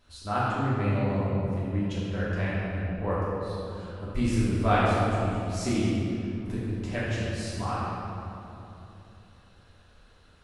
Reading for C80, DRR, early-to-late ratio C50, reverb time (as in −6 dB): −1.5 dB, −9.5 dB, −4.0 dB, 3.0 s